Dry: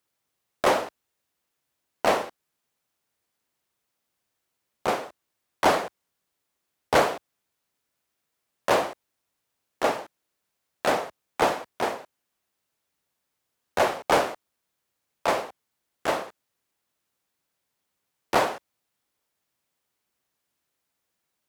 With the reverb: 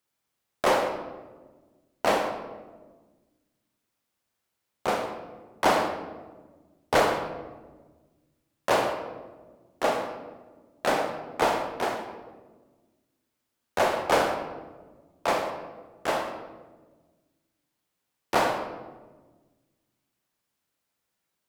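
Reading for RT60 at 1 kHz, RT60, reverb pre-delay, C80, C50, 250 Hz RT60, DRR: 1.1 s, 1.3 s, 29 ms, 7.5 dB, 5.5 dB, 2.0 s, 4.0 dB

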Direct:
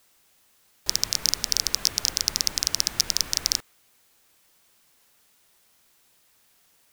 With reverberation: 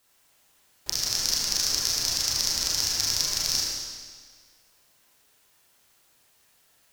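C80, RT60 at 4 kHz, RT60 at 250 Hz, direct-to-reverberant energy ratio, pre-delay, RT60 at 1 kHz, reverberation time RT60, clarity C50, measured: 0.0 dB, 1.6 s, 1.7 s, -6.0 dB, 30 ms, 1.7 s, 1.7 s, -2.0 dB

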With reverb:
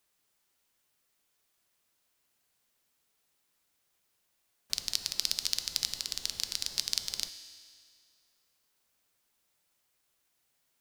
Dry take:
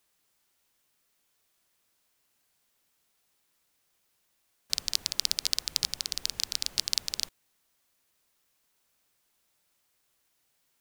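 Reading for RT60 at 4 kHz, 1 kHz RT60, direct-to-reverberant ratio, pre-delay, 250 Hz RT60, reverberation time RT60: 2.1 s, 2.1 s, 9.5 dB, 4 ms, 2.1 s, 2.1 s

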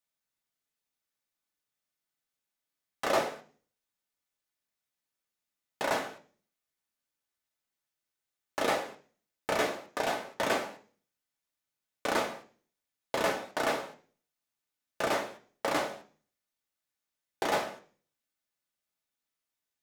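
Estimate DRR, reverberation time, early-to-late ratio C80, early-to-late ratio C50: 1.0 dB, 0.45 s, 18.5 dB, 14.0 dB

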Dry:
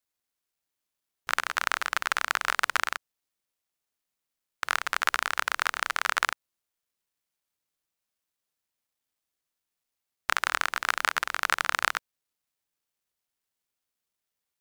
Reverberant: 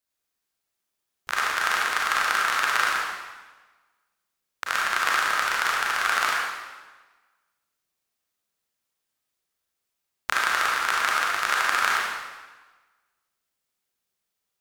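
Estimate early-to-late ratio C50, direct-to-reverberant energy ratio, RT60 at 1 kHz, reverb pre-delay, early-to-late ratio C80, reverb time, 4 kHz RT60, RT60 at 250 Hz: -1.5 dB, -4.0 dB, 1.3 s, 30 ms, 1.5 dB, 1.3 s, 1.1 s, 1.3 s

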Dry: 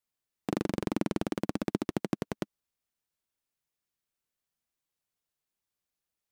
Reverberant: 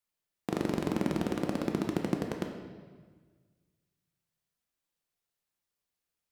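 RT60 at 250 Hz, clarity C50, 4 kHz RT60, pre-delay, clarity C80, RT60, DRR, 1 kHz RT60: 1.7 s, 5.0 dB, 1.3 s, 6 ms, 7.0 dB, 1.5 s, 2.0 dB, 1.5 s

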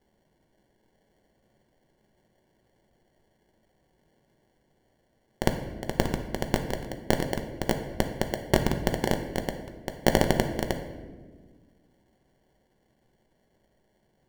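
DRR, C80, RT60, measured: 5.0 dB, 10.0 dB, 1.5 s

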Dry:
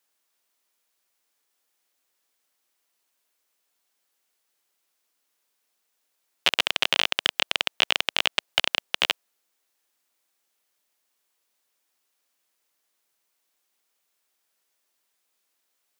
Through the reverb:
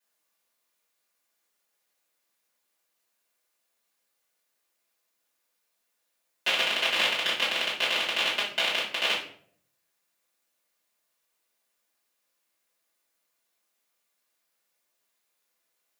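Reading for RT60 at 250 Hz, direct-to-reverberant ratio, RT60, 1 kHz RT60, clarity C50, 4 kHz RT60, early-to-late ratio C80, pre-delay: 0.75 s, -9.5 dB, 0.60 s, 0.50 s, 5.0 dB, 0.40 s, 10.0 dB, 3 ms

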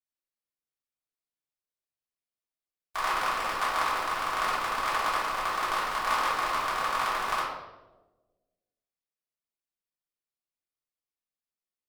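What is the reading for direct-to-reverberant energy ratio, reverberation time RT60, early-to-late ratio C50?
-10.0 dB, 1.2 s, 1.0 dB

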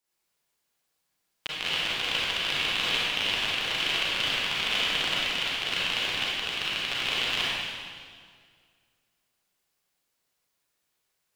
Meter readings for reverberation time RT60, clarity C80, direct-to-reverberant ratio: 2.0 s, -2.0 dB, -7.5 dB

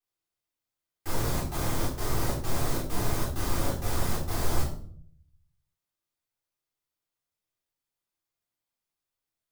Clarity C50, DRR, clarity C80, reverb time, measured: 5.5 dB, -10.0 dB, 9.5 dB, 0.55 s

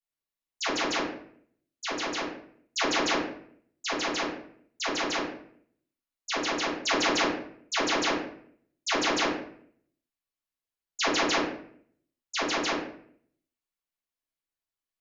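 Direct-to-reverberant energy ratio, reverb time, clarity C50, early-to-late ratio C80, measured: -12.5 dB, 0.60 s, 3.5 dB, 7.5 dB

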